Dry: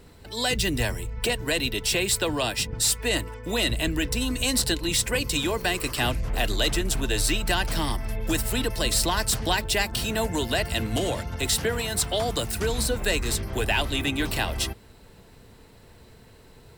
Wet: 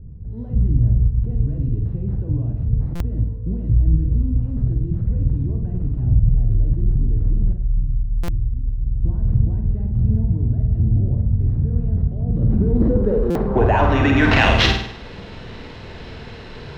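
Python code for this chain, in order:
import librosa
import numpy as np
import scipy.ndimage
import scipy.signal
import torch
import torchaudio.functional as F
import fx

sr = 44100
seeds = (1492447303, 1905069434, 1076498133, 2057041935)

p1 = fx.tone_stack(x, sr, knobs='10-0-1', at=(7.51, 9.03), fade=0.02)
p2 = fx.over_compress(p1, sr, threshold_db=-28.0, ratio=-0.5)
p3 = p1 + F.gain(torch.from_numpy(p2), 1.0).numpy()
p4 = fx.fixed_phaser(p3, sr, hz=460.0, stages=8, at=(12.97, 13.56))
p5 = fx.sample_hold(p4, sr, seeds[0], rate_hz=9300.0, jitter_pct=0)
p6 = fx.filter_sweep_lowpass(p5, sr, from_hz=120.0, to_hz=3400.0, start_s=12.15, end_s=14.65, q=1.4)
p7 = p6 + fx.room_flutter(p6, sr, wall_m=8.6, rt60_s=0.61, dry=0)
p8 = fx.buffer_glitch(p7, sr, at_s=(2.95, 8.23, 13.3), block=256, repeats=8)
y = F.gain(torch.from_numpy(p8), 5.5).numpy()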